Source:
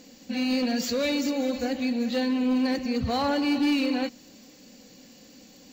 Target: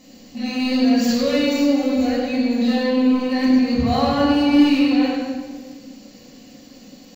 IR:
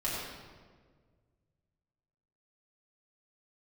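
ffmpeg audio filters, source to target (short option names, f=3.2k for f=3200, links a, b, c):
-filter_complex "[0:a]atempo=0.8[a];[1:a]atrim=start_sample=2205[b];[a][b]afir=irnorm=-1:irlink=0"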